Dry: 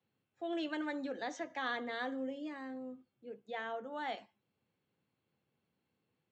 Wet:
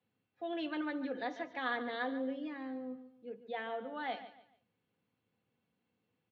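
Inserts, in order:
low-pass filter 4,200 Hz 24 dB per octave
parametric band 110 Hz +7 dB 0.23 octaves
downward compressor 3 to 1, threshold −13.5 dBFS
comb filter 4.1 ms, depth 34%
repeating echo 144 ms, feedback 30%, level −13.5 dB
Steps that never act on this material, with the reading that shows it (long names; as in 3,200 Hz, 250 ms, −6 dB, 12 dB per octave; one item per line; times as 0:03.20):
downward compressor, threshold −13.5 dBFS: peak of its input −24.5 dBFS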